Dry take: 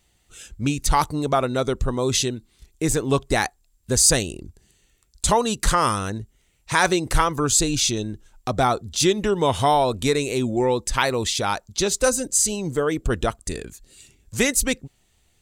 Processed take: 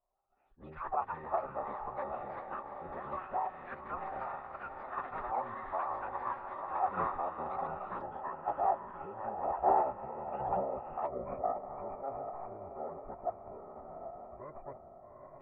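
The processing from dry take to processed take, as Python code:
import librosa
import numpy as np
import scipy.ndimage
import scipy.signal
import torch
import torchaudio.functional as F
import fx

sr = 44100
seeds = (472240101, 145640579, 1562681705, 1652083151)

p1 = fx.tracing_dist(x, sr, depth_ms=0.11)
p2 = fx.over_compress(p1, sr, threshold_db=-21.0, ratio=-0.5)
p3 = p1 + F.gain(torch.from_numpy(p2), -2.0).numpy()
p4 = fx.formant_cascade(p3, sr, vowel='a')
p5 = p4 + fx.echo_diffused(p4, sr, ms=812, feedback_pct=49, wet_db=-5.5, dry=0)
p6 = fx.echo_pitch(p5, sr, ms=153, semitones=6, count=2, db_per_echo=-6.0)
p7 = fx.pitch_keep_formants(p6, sr, semitones=-11.0)
y = F.gain(torch.from_numpy(p7), -6.0).numpy()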